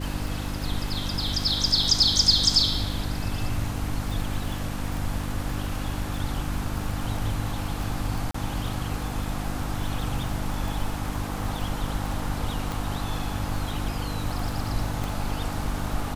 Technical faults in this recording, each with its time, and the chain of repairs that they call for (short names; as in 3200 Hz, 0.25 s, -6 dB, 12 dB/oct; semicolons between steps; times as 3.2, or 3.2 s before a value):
crackle 49/s -31 dBFS
hum 50 Hz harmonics 6 -32 dBFS
8.31–8.34 gap 34 ms
12.72 pop
15.04 pop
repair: de-click; de-hum 50 Hz, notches 6; interpolate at 8.31, 34 ms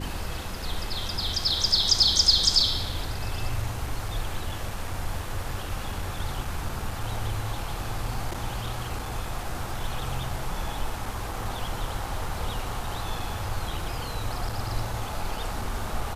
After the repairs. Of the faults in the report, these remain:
12.72 pop
15.04 pop